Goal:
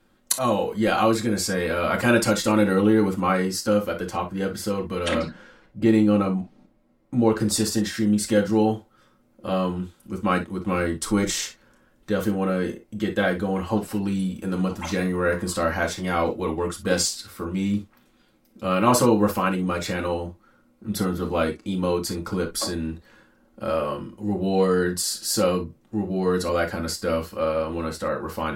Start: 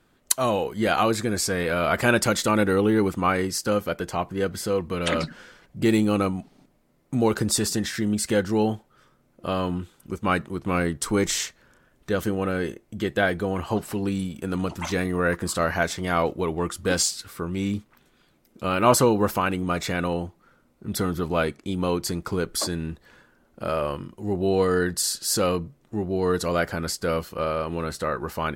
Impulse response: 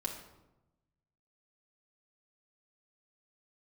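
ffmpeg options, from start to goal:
-filter_complex "[0:a]asettb=1/sr,asplit=3[a][b][c];[a]atrim=end=5.184[d];[b]atrim=start=5.18:end=7.4,asetpts=PTS-STARTPTS,afade=t=in:d=0.004:c=qsin,afade=t=out:st=2.216:d=0.004:c=qsin,highshelf=f=3.9k:g=-10[e];[c]atrim=start=7.396[f];[d][e]acrossfade=d=0.004:c1=hsin:c2=qsin[g];[g][f]acrossfade=d=0.004:c1=qsin:c2=hsin[h];[1:a]atrim=start_sample=2205,atrim=end_sample=3087[i];[h][i]afir=irnorm=-1:irlink=0,volume=-1dB"

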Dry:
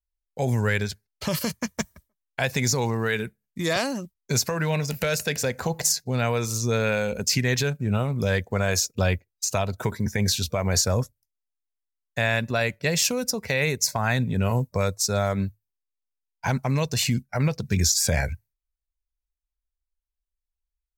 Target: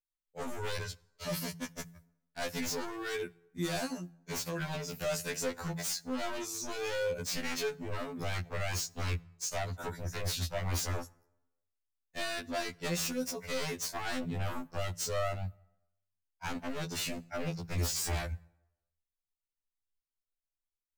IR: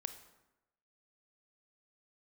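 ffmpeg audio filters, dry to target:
-filter_complex "[0:a]bandreject=f=56.01:t=h:w=4,bandreject=f=112.02:t=h:w=4,bandreject=f=168.03:t=h:w=4,bandreject=f=224.04:t=h:w=4,aeval=exprs='0.0891*(abs(mod(val(0)/0.0891+3,4)-2)-1)':c=same,asplit=2[a][b];[1:a]atrim=start_sample=2205[c];[b][c]afir=irnorm=-1:irlink=0,volume=-11.5dB[d];[a][d]amix=inputs=2:normalize=0,afftfilt=real='re*2*eq(mod(b,4),0)':imag='im*2*eq(mod(b,4),0)':win_size=2048:overlap=0.75,volume=-7.5dB"

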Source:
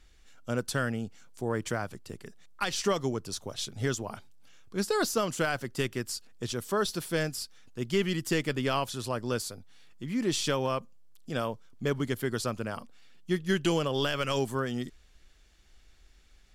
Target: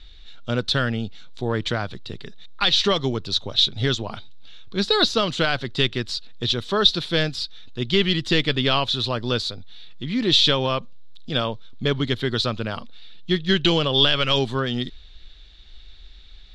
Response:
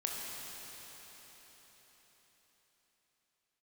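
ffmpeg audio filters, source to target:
-af "lowpass=f=3.8k:t=q:w=8.7,lowshelf=f=74:g=11,volume=5.5dB"

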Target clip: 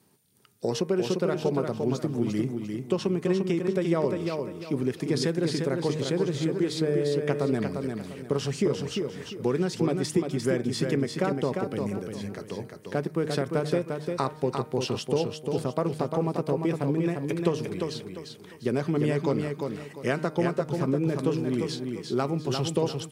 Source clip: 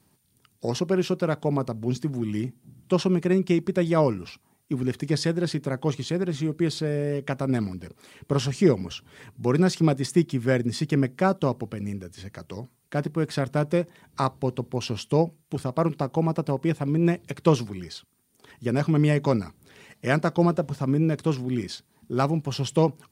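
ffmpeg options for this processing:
-af "highpass=120,equalizer=f=430:w=3.7:g=6.5,bandreject=f=154.3:t=h:w=4,bandreject=f=308.6:t=h:w=4,bandreject=f=462.9:t=h:w=4,bandreject=f=617.2:t=h:w=4,bandreject=f=771.5:t=h:w=4,bandreject=f=925.8:t=h:w=4,bandreject=f=1.0801k:t=h:w=4,bandreject=f=1.2344k:t=h:w=4,bandreject=f=1.3887k:t=h:w=4,bandreject=f=1.543k:t=h:w=4,bandreject=f=1.6973k:t=h:w=4,bandreject=f=1.8516k:t=h:w=4,bandreject=f=2.0059k:t=h:w=4,bandreject=f=2.1602k:t=h:w=4,bandreject=f=2.3145k:t=h:w=4,bandreject=f=2.4688k:t=h:w=4,acompressor=threshold=-22dB:ratio=6,aecho=1:1:349|698|1047|1396:0.562|0.174|0.054|0.0168"

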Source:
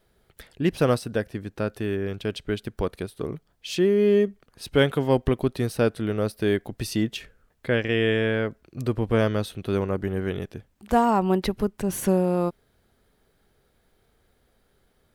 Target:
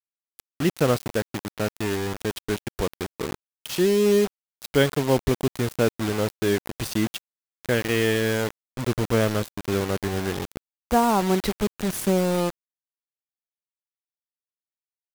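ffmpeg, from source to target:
-filter_complex "[0:a]asettb=1/sr,asplit=3[a][b][c];[a]atrim=end=6.264[d];[b]atrim=start=6.26:end=6.93,asetpts=PTS-STARTPTS,afade=t=in:d=0.004:c=qsin,afade=t=out:st=0.666:d=0.004:c=qsin,bandreject=f=71:t=h:w=4,bandreject=f=142:t=h:w=4,bandreject=f=213:t=h:w=4,bandreject=f=284:t=h:w=4[e];[c]atrim=start=6.926[f];[d][e]acrossfade=d=0.004:c1=hsin:c2=qsin[g];[g][f]acrossfade=d=0.004:c1=qsin:c2=hsin,acrusher=bits=4:mix=0:aa=0.000001"

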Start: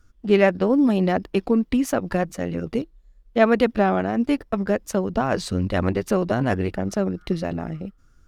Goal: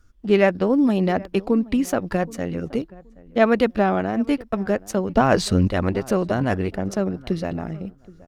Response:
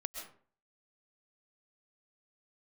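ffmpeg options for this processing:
-filter_complex "[0:a]asettb=1/sr,asplit=3[a][b][c];[a]atrim=end=5.164[d];[b]atrim=start=5.16:end=5.68,asetpts=PTS-STARTPTS,afade=t=in:d=0.004:c=qsin,afade=t=out:st=0.516:d=0.004:c=qsin,acontrast=51[e];[c]atrim=start=5.676[f];[d][e]acrossfade=d=0.004:c1=hsin:c2=qsin[g];[g][f]acrossfade=d=0.004:c1=qsin:c2=hsin,asplit=2[h][i];[i]adelay=774,lowpass=f=1.2k:p=1,volume=-21dB,asplit=2[j][k];[k]adelay=774,lowpass=f=1.2k:p=1,volume=0.23[l];[j][l]amix=inputs=2:normalize=0[m];[h][m]amix=inputs=2:normalize=0"

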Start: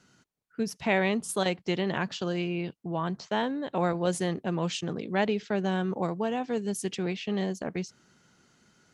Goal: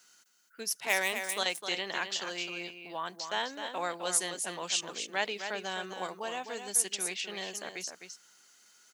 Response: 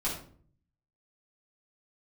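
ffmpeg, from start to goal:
-filter_complex "[0:a]highpass=f=1.1k:p=1,asettb=1/sr,asplit=3[a][b][c];[a]atrim=end=0.804[d];[b]atrim=start=0.8:end=1.38,asetpts=PTS-STARTPTS,afade=t=in:d=0.004:c=qsin,afade=t=out:st=0.576:d=0.004:c=qsin,adynamicsmooth=sensitivity=7.5:basefreq=2.4k[e];[c]atrim=start=1.376[f];[d][e]acrossfade=d=0.004:c1=hsin:c2=qsin[g];[g][f]acrossfade=d=0.004:c1=qsin:c2=hsin,aemphasis=mode=production:type=bsi,asplit=2[h][i];[i]aecho=0:1:258:0.398[j];[h][j]amix=inputs=2:normalize=0"

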